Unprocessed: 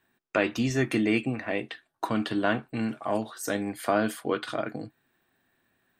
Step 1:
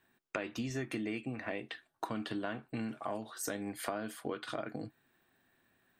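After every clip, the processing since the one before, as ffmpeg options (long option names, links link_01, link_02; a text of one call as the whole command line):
ffmpeg -i in.wav -af "acompressor=threshold=-34dB:ratio=6,volume=-1dB" out.wav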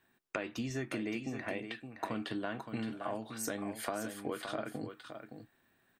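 ffmpeg -i in.wav -af "aecho=1:1:568:0.376" out.wav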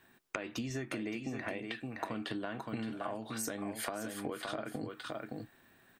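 ffmpeg -i in.wav -af "acompressor=threshold=-44dB:ratio=5,volume=8dB" out.wav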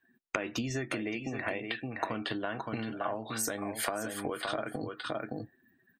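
ffmpeg -i in.wav -af "afftdn=noise_reduction=24:noise_floor=-55,adynamicequalizer=threshold=0.00282:dfrequency=210:dqfactor=0.86:tfrequency=210:tqfactor=0.86:attack=5:release=100:ratio=0.375:range=3:mode=cutabove:tftype=bell,volume=6dB" out.wav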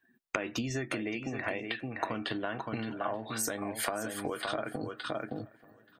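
ffmpeg -i in.wav -filter_complex "[0:a]asplit=2[link_01][link_02];[link_02]adelay=881,lowpass=frequency=2300:poles=1,volume=-23dB,asplit=2[link_03][link_04];[link_04]adelay=881,lowpass=frequency=2300:poles=1,volume=0.53,asplit=2[link_05][link_06];[link_06]adelay=881,lowpass=frequency=2300:poles=1,volume=0.53,asplit=2[link_07][link_08];[link_08]adelay=881,lowpass=frequency=2300:poles=1,volume=0.53[link_09];[link_01][link_03][link_05][link_07][link_09]amix=inputs=5:normalize=0" out.wav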